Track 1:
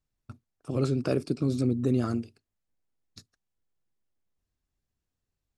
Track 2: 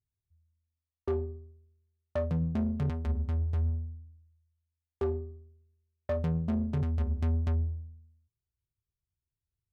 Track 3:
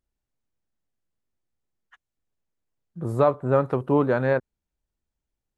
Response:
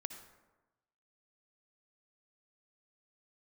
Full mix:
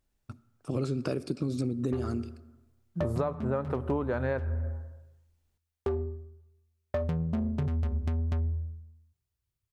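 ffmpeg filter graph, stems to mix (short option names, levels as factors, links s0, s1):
-filter_complex "[0:a]volume=0.891,asplit=2[s0][s1];[s1]volume=0.376[s2];[1:a]adelay=850,volume=1.41,asplit=2[s3][s4];[s4]volume=0.168[s5];[2:a]volume=1.19,asplit=2[s6][s7];[s7]volume=0.501[s8];[3:a]atrim=start_sample=2205[s9];[s2][s5][s8]amix=inputs=3:normalize=0[s10];[s10][s9]afir=irnorm=-1:irlink=0[s11];[s0][s3][s6][s11]amix=inputs=4:normalize=0,acompressor=threshold=0.0501:ratio=12"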